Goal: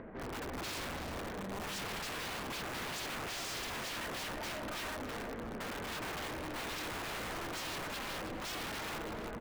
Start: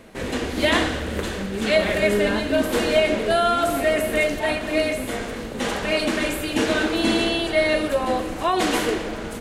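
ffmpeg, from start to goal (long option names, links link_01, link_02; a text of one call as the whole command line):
ffmpeg -i in.wav -filter_complex "[0:a]lowpass=frequency=1900:width=0.5412,lowpass=frequency=1900:width=1.3066,aemphasis=mode=reproduction:type=75kf,aeval=exprs='(mod(13.3*val(0)+1,2)-1)/13.3':channel_layout=same,acompressor=mode=upward:threshold=-35dB:ratio=2.5,asoftclip=type=tanh:threshold=-33.5dB,asplit=2[link_01][link_02];[link_02]adelay=326.5,volume=-7dB,highshelf=frequency=4000:gain=-7.35[link_03];[link_01][link_03]amix=inputs=2:normalize=0,volume=-6dB" out.wav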